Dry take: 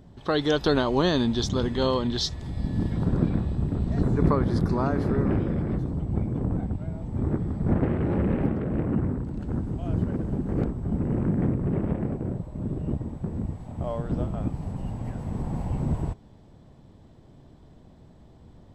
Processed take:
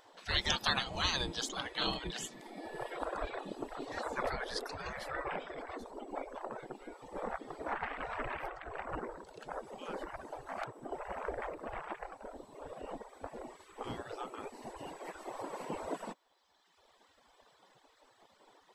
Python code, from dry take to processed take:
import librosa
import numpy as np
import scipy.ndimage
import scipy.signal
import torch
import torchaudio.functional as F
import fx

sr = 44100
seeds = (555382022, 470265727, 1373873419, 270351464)

y = fx.dereverb_blind(x, sr, rt60_s=1.6)
y = fx.spec_gate(y, sr, threshold_db=-20, keep='weak')
y = fx.low_shelf(y, sr, hz=380.0, db=4.5)
y = y * 10.0 ** (5.5 / 20.0)